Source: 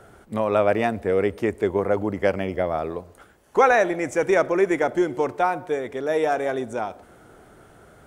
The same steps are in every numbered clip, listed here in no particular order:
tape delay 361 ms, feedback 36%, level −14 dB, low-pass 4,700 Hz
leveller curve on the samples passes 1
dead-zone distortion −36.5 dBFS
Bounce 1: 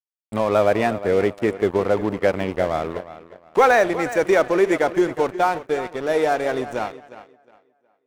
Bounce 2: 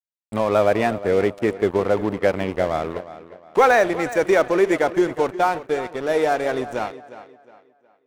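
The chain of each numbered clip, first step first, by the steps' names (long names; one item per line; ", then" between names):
dead-zone distortion, then tape delay, then leveller curve on the samples
dead-zone distortion, then leveller curve on the samples, then tape delay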